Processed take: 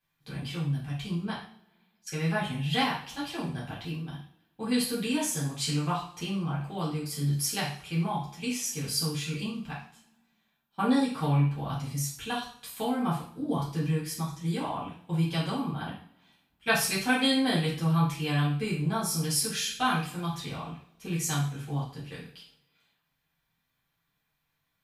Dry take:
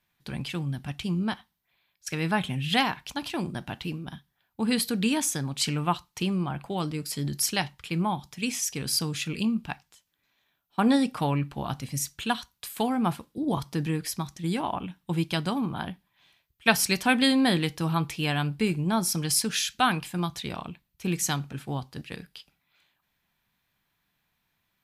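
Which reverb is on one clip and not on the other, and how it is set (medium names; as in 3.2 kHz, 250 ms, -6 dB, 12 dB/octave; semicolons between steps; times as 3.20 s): two-slope reverb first 0.47 s, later 1.7 s, from -25 dB, DRR -8 dB; trim -11.5 dB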